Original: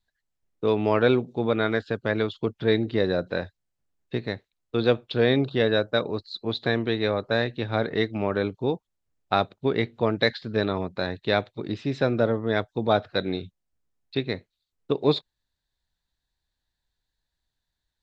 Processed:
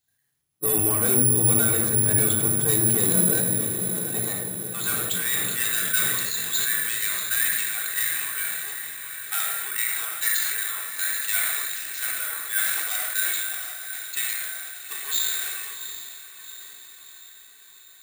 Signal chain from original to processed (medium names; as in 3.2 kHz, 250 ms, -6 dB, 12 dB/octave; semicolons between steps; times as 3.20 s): coarse spectral quantiser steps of 15 dB; peaking EQ 490 Hz -8.5 dB 3 oct; in parallel at +2 dB: peak limiter -21.5 dBFS, peak gain reduction 11 dB; on the sum: hard clipper -22.5 dBFS, distortion -8 dB; high-pass sweep 140 Hz -> 1.7 kHz, 2.81–5.08 s; echo that smears into a reverb 768 ms, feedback 58%, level -7.5 dB; simulated room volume 3400 m³, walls furnished, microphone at 3.5 m; careless resampling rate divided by 4×, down none, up zero stuff; decay stretcher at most 23 dB/s; trim -6 dB